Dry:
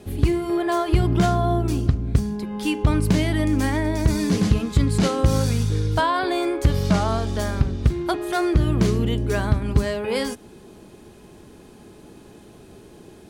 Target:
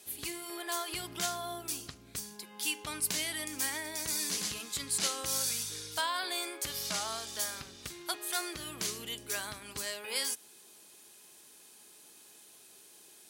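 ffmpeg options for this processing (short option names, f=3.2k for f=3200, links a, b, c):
-af "aderivative,volume=3.5dB"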